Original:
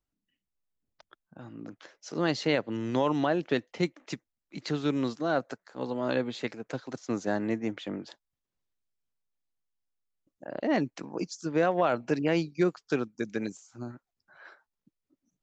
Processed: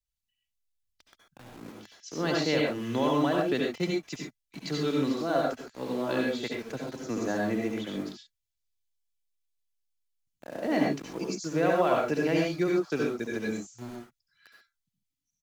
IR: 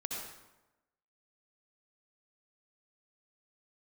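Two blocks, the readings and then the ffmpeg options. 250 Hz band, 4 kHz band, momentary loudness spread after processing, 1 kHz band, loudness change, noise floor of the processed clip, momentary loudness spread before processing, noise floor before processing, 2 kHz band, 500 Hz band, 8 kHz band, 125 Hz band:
+1.0 dB, +2.5 dB, 16 LU, +1.0 dB, +1.0 dB, -85 dBFS, 16 LU, under -85 dBFS, +1.5 dB, +1.5 dB, no reading, 0.0 dB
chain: -filter_complex "[0:a]acrossover=split=120|2300[s0][s1][s2];[s1]aeval=exprs='val(0)*gte(abs(val(0)),0.00794)':c=same[s3];[s2]aecho=1:1:3:0.89[s4];[s0][s3][s4]amix=inputs=3:normalize=0[s5];[1:a]atrim=start_sample=2205,atrim=end_sample=6174,asetrate=41895,aresample=44100[s6];[s5][s6]afir=irnorm=-1:irlink=0"

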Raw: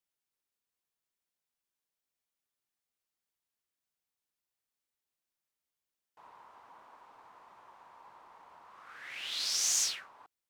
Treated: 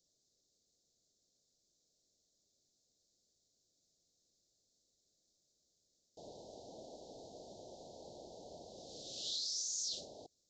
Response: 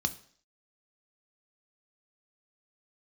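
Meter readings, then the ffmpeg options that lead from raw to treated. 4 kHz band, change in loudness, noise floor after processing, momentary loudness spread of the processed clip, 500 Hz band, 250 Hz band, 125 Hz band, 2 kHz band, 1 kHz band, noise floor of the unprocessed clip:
-6.0 dB, -11.5 dB, -81 dBFS, 18 LU, +10.5 dB, +10.5 dB, +10.0 dB, under -30 dB, -7.0 dB, under -85 dBFS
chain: -af "areverse,acompressor=threshold=0.00562:ratio=6,areverse,aresample=16000,aresample=44100,asuperstop=centerf=1600:order=12:qfactor=0.5,highshelf=f=4800:g=4,alimiter=level_in=12.6:limit=0.0631:level=0:latency=1:release=52,volume=0.0794,volume=5.62"

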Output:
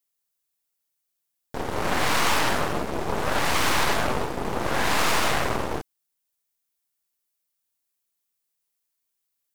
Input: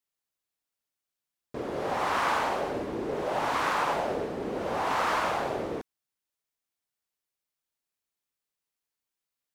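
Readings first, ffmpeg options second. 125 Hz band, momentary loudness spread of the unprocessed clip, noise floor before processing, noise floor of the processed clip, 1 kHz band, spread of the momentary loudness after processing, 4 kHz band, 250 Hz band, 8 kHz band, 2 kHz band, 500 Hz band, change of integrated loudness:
+10.0 dB, 8 LU, under -85 dBFS, -79 dBFS, +2.5 dB, 9 LU, +11.0 dB, +5.0 dB, +14.5 dB, +7.0 dB, +2.0 dB, +5.0 dB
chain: -af "crystalizer=i=1.5:c=0,aeval=exprs='0.211*(cos(1*acos(clip(val(0)/0.211,-1,1)))-cos(1*PI/2))+0.075*(cos(8*acos(clip(val(0)/0.211,-1,1)))-cos(8*PI/2))':c=same"

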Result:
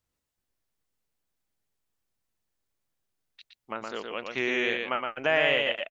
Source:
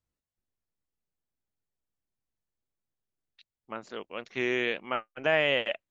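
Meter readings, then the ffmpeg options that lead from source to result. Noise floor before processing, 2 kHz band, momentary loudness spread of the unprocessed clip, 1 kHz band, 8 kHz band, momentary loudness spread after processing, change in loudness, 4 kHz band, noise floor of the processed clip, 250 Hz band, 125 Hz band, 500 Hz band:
under -85 dBFS, +3.0 dB, 16 LU, +3.0 dB, no reading, 14 LU, +2.0 dB, +3.0 dB, -84 dBFS, +0.5 dB, -1.5 dB, +1.0 dB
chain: -filter_complex "[0:a]lowshelf=f=430:g=-4.5,asplit=2[s0][s1];[s1]acompressor=threshold=0.01:ratio=6,volume=1.12[s2];[s0][s2]amix=inputs=2:normalize=0,aecho=1:1:117:0.631"

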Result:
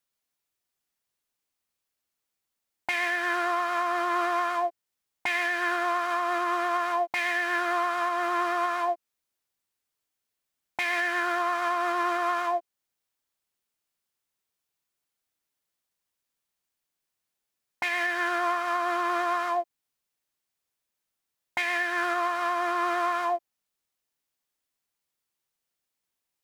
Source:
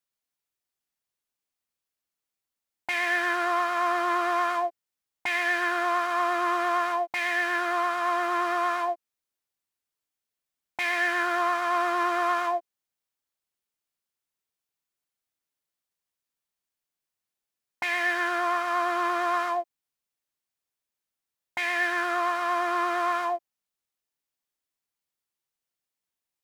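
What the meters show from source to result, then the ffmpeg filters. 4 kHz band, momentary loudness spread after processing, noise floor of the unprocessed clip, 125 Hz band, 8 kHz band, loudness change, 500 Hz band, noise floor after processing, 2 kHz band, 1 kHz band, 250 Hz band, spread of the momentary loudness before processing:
-0.5 dB, 5 LU, under -85 dBFS, no reading, -1.0 dB, -1.0 dB, -0.5 dB, -85 dBFS, -1.0 dB, -1.0 dB, -1.0 dB, 6 LU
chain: -af "alimiter=limit=0.0794:level=0:latency=1:release=425,volume=1.5"

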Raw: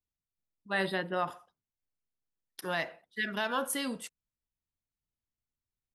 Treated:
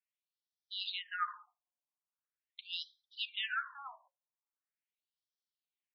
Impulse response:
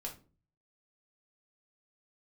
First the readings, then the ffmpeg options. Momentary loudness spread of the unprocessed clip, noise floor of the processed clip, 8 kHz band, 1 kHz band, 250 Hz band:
12 LU, under -85 dBFS, under -30 dB, -6.5 dB, under -40 dB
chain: -filter_complex "[0:a]lowshelf=f=440:t=q:w=3:g=9.5,asplit=2[s0][s1];[1:a]atrim=start_sample=2205[s2];[s1][s2]afir=irnorm=-1:irlink=0,volume=0.141[s3];[s0][s3]amix=inputs=2:normalize=0,afftfilt=real='re*between(b*sr/1024,770*pow(4400/770,0.5+0.5*sin(2*PI*0.42*pts/sr))/1.41,770*pow(4400/770,0.5+0.5*sin(2*PI*0.42*pts/sr))*1.41)':imag='im*between(b*sr/1024,770*pow(4400/770,0.5+0.5*sin(2*PI*0.42*pts/sr))/1.41,770*pow(4400/770,0.5+0.5*sin(2*PI*0.42*pts/sr))*1.41)':win_size=1024:overlap=0.75,volume=1.41"

